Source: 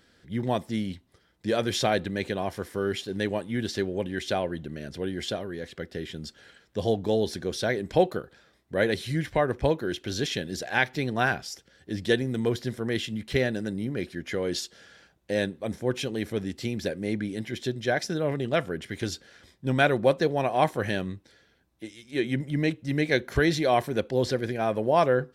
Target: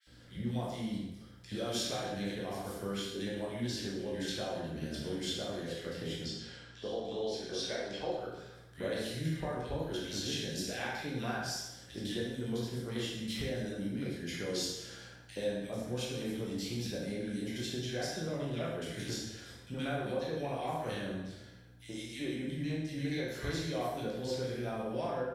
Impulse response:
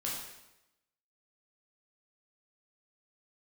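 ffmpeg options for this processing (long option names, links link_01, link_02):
-filter_complex "[0:a]asettb=1/sr,asplit=3[link_01][link_02][link_03];[link_01]atrim=end=6.194[link_04];[link_02]atrim=start=6.19:end=8.19,asetpts=PTS-STARTPTS,afade=type=in:duration=0.004:curve=qsin,afade=type=out:start_time=1.996:duration=0.004:curve=qsin,acrossover=split=270 6700:gain=0.224 1 0.126[link_05][link_06][link_07];[link_05][link_06][link_07]amix=inputs=3:normalize=0[link_08];[link_03]atrim=start=8.186[link_09];[link_04][link_08]acrossfade=duration=0.004:curve1=hsin:curve2=qsin[link_10];[link_10][link_09]acrossfade=duration=0.004:curve1=qsin:curve2=hsin,acompressor=threshold=-38dB:ratio=4,aeval=exprs='val(0)+0.00126*(sin(2*PI*60*n/s)+sin(2*PI*2*60*n/s)/2+sin(2*PI*3*60*n/s)/3+sin(2*PI*4*60*n/s)/4+sin(2*PI*5*60*n/s)/5)':channel_layout=same,acrossover=split=1900[link_11][link_12];[link_11]adelay=70[link_13];[link_13][link_12]amix=inputs=2:normalize=0[link_14];[1:a]atrim=start_sample=2205[link_15];[link_14][link_15]afir=irnorm=-1:irlink=0,adynamicequalizer=threshold=0.00224:dfrequency=3200:dqfactor=0.7:tfrequency=3200:tqfactor=0.7:attack=5:release=100:ratio=0.375:range=2:mode=boostabove:tftype=highshelf"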